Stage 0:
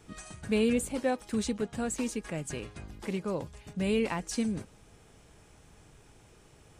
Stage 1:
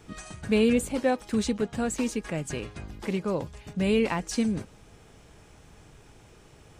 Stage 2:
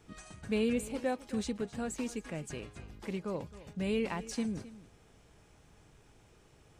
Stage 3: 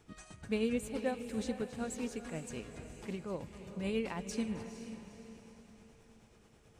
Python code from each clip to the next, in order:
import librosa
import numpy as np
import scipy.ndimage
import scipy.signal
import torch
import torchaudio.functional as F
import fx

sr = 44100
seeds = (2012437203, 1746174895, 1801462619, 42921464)

y1 = fx.peak_eq(x, sr, hz=9600.0, db=-4.5, octaves=0.81)
y1 = F.gain(torch.from_numpy(y1), 4.5).numpy()
y2 = y1 + 10.0 ** (-17.0 / 20.0) * np.pad(y1, (int(264 * sr / 1000.0), 0))[:len(y1)]
y2 = F.gain(torch.from_numpy(y2), -8.5).numpy()
y3 = y2 * (1.0 - 0.43 / 2.0 + 0.43 / 2.0 * np.cos(2.0 * np.pi * 9.3 * (np.arange(len(y2)) / sr)))
y3 = fx.echo_diffused(y3, sr, ms=471, feedback_pct=44, wet_db=-10)
y3 = F.gain(torch.from_numpy(y3), -1.0).numpy()